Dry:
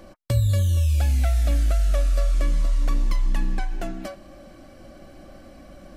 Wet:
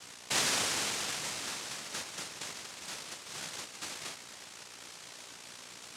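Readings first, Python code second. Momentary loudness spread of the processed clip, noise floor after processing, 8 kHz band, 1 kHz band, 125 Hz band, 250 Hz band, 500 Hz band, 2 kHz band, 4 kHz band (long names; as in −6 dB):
18 LU, −51 dBFS, +6.5 dB, −2.5 dB, −32.5 dB, −13.0 dB, −11.0 dB, +2.0 dB, +6.5 dB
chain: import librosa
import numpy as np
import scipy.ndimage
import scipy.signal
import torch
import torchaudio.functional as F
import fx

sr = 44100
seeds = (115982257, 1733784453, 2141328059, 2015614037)

y = fx.add_hum(x, sr, base_hz=60, snr_db=15)
y = fx.noise_vocoder(y, sr, seeds[0], bands=1)
y = F.gain(torch.from_numpy(y), -8.5).numpy()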